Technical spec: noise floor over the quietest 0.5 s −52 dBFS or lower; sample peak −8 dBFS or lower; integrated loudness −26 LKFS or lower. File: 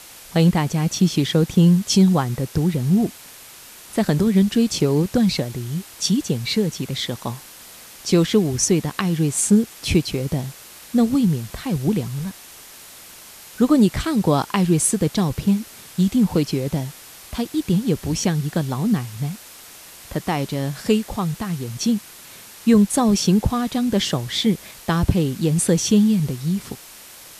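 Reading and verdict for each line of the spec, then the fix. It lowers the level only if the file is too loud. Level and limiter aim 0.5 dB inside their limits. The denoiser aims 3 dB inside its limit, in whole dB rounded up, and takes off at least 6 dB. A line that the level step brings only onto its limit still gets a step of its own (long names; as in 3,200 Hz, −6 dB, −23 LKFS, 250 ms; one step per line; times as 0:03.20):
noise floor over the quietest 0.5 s −42 dBFS: out of spec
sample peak −4.5 dBFS: out of spec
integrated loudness −20.5 LKFS: out of spec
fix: broadband denoise 7 dB, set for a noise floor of −42 dBFS
level −6 dB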